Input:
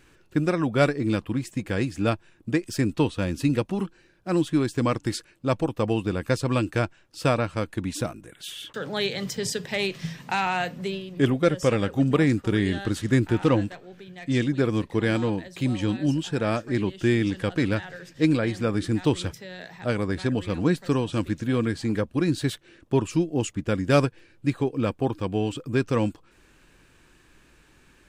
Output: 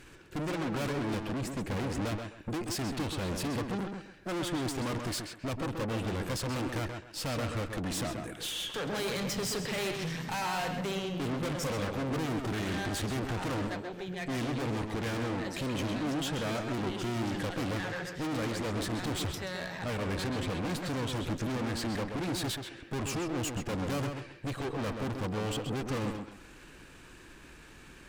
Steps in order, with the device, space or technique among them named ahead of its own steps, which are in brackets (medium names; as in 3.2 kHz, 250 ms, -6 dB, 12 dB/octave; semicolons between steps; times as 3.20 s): 1.41–2.05 s: tilt shelf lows +4.5 dB; rockabilly slapback (valve stage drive 39 dB, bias 0.55; tape echo 131 ms, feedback 27%, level -3.5 dB, low-pass 3.4 kHz); trim +6.5 dB